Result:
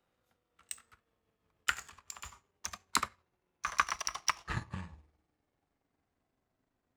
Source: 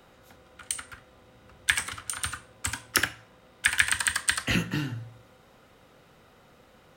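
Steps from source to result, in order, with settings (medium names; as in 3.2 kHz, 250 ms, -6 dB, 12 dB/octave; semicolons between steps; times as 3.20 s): pitch bend over the whole clip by -12 st starting unshifted; power-law waveshaper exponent 1.4; trim -4 dB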